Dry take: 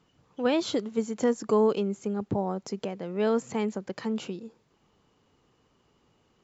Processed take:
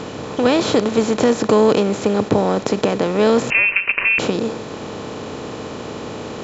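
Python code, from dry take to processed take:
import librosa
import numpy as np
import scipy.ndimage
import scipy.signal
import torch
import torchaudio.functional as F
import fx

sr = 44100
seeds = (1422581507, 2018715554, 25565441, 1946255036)

y = fx.bin_compress(x, sr, power=0.4)
y = fx.freq_invert(y, sr, carrier_hz=2900, at=(3.5, 4.19))
y = y * 10.0 ** (7.0 / 20.0)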